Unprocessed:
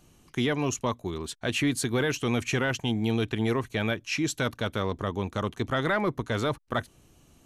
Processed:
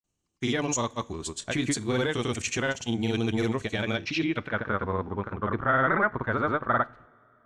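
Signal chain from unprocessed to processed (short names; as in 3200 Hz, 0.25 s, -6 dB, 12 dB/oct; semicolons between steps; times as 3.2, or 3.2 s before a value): gate -52 dBFS, range -22 dB; grains, grains 20/s, pitch spread up and down by 0 st; low-pass sweep 7600 Hz -> 1500 Hz, 3.83–4.62; two-slope reverb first 0.33 s, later 3.1 s, from -20 dB, DRR 17 dB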